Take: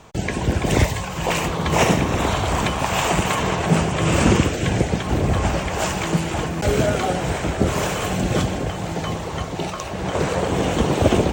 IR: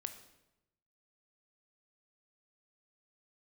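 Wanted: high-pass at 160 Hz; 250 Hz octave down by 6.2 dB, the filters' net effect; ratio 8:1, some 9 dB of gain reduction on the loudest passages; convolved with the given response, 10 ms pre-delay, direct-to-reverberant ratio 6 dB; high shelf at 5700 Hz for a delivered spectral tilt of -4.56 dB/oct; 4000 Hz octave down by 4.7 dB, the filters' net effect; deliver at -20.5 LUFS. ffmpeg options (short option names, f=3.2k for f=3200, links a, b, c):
-filter_complex "[0:a]highpass=160,equalizer=f=250:t=o:g=-7.5,equalizer=f=4k:t=o:g=-5,highshelf=f=5.7k:g=-5,acompressor=threshold=-23dB:ratio=8,asplit=2[a][b];[1:a]atrim=start_sample=2205,adelay=10[c];[b][c]afir=irnorm=-1:irlink=0,volume=-3.5dB[d];[a][d]amix=inputs=2:normalize=0,volume=6.5dB"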